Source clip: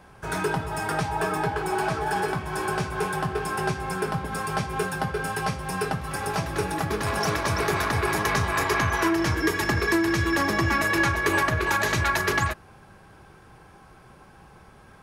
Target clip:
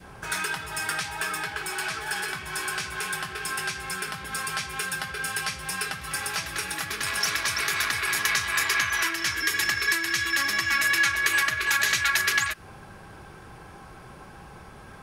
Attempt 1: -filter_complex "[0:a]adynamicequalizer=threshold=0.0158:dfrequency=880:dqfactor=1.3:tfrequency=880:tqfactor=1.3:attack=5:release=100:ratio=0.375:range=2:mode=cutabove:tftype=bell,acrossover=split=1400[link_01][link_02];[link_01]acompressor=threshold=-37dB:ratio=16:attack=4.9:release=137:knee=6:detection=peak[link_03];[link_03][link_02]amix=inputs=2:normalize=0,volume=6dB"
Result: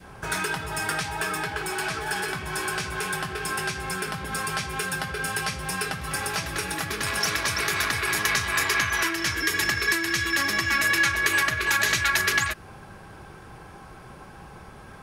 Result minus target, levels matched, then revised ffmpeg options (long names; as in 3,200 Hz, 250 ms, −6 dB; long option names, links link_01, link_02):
downward compressor: peak gain reduction −7.5 dB
-filter_complex "[0:a]adynamicequalizer=threshold=0.0158:dfrequency=880:dqfactor=1.3:tfrequency=880:tqfactor=1.3:attack=5:release=100:ratio=0.375:range=2:mode=cutabove:tftype=bell,acrossover=split=1400[link_01][link_02];[link_01]acompressor=threshold=-45dB:ratio=16:attack=4.9:release=137:knee=6:detection=peak[link_03];[link_03][link_02]amix=inputs=2:normalize=0,volume=6dB"